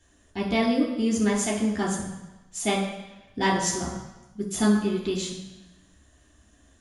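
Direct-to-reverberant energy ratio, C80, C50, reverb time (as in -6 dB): -4.0 dB, 6.5 dB, 4.5 dB, 1.0 s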